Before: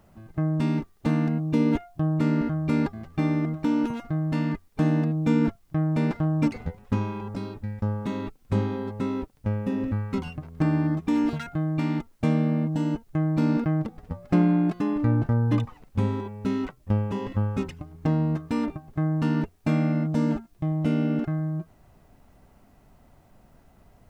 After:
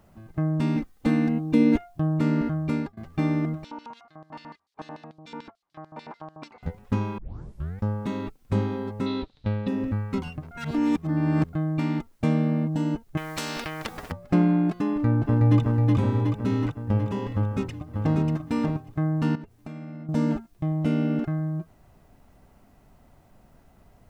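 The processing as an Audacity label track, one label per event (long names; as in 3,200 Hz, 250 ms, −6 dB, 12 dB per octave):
0.760000	1.760000	comb filter 3.9 ms
2.510000	2.970000	fade out equal-power, to −23 dB
3.640000	6.630000	auto-filter band-pass square 6.8 Hz 940–4,200 Hz
7.180000	7.180000	tape start 0.63 s
9.060000	9.680000	low-pass with resonance 3,900 Hz, resonance Q 8.8
10.510000	11.530000	reverse
13.170000	14.120000	every bin compressed towards the loudest bin 4 to 1
14.900000	15.600000	delay throw 370 ms, feedback 65%, level −1.5 dB
17.340000	18.170000	delay throw 590 ms, feedback 10%, level −4.5 dB
19.350000	20.090000	downward compressor 5 to 1, threshold −37 dBFS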